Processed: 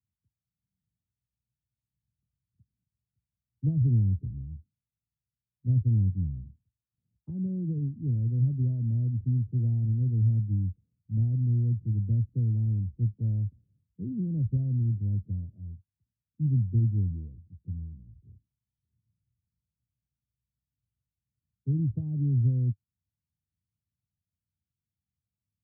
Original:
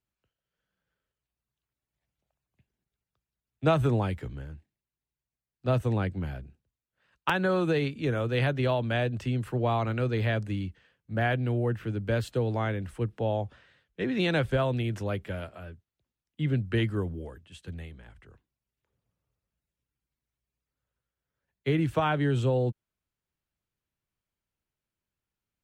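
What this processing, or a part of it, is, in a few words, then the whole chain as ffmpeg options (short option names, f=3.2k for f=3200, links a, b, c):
the neighbour's flat through the wall: -af "highpass=f=59:w=0.5412,highpass=f=59:w=1.3066,lowpass=f=230:w=0.5412,lowpass=f=230:w=1.3066,equalizer=f=100:t=o:w=0.81:g=7"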